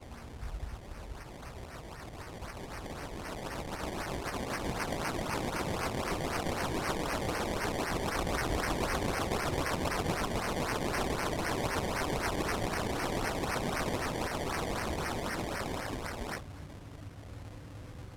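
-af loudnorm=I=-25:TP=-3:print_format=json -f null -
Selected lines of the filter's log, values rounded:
"input_i" : "-34.8",
"input_tp" : "-18.0",
"input_lra" : "7.7",
"input_thresh" : "-45.7",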